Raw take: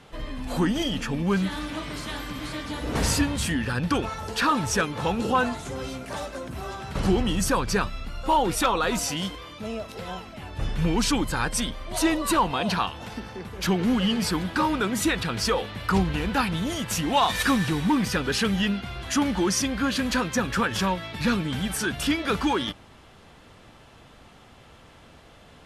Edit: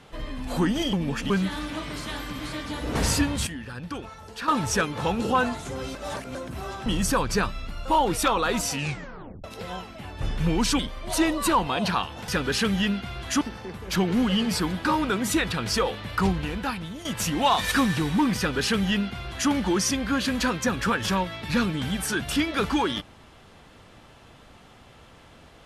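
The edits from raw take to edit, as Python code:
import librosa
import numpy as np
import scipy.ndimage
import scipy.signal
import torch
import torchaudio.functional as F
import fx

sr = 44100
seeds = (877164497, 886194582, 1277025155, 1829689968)

y = fx.edit(x, sr, fx.reverse_span(start_s=0.93, length_s=0.37),
    fx.clip_gain(start_s=3.47, length_s=1.01, db=-10.0),
    fx.reverse_span(start_s=5.95, length_s=0.4),
    fx.cut(start_s=6.86, length_s=0.38),
    fx.tape_stop(start_s=9.1, length_s=0.72),
    fx.cut(start_s=11.17, length_s=0.46),
    fx.fade_out_to(start_s=15.84, length_s=0.92, floor_db=-12.0),
    fx.duplicate(start_s=18.08, length_s=1.13, to_s=13.12), tone=tone)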